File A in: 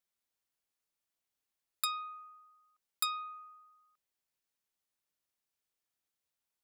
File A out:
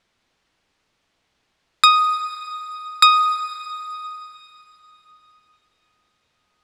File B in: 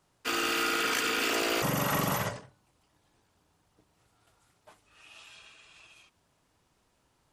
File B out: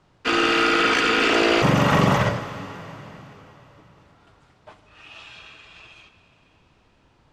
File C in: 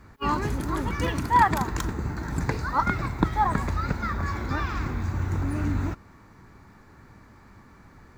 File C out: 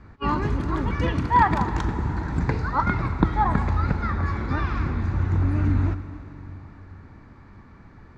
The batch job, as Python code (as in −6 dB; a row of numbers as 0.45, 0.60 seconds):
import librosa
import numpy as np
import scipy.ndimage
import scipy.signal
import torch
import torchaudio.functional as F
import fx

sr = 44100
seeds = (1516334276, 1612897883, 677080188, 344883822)

y = scipy.signal.sosfilt(scipy.signal.butter(2, 4000.0, 'lowpass', fs=sr, output='sos'), x)
y = fx.low_shelf(y, sr, hz=290.0, db=4.5)
y = fx.rev_plate(y, sr, seeds[0], rt60_s=3.9, hf_ratio=0.95, predelay_ms=0, drr_db=10.5)
y = y * 10.0 ** (-24 / 20.0) / np.sqrt(np.mean(np.square(y)))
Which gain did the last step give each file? +24.0, +10.0, 0.0 decibels